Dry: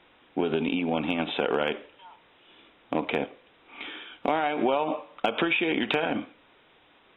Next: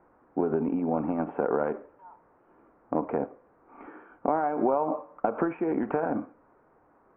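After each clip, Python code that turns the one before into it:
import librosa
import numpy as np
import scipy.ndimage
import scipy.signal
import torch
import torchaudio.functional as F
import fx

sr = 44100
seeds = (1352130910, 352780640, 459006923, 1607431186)

y = scipy.signal.sosfilt(scipy.signal.cheby2(4, 50, 3400.0, 'lowpass', fs=sr, output='sos'), x)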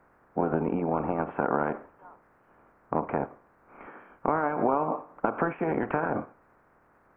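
y = fx.spec_clip(x, sr, under_db=14)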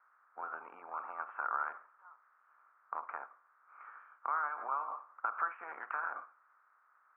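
y = fx.ladder_bandpass(x, sr, hz=1400.0, resonance_pct=65)
y = y * librosa.db_to_amplitude(1.5)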